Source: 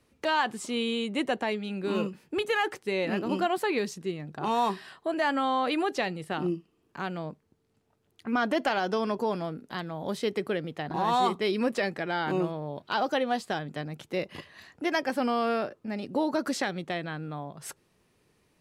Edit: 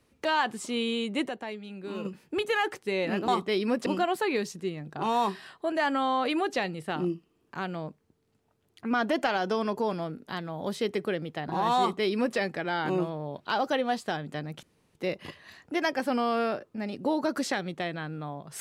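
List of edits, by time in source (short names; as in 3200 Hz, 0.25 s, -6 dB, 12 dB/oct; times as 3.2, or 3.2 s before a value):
1.29–2.05 gain -7.5 dB
11.21–11.79 copy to 3.28
14.05 insert room tone 0.32 s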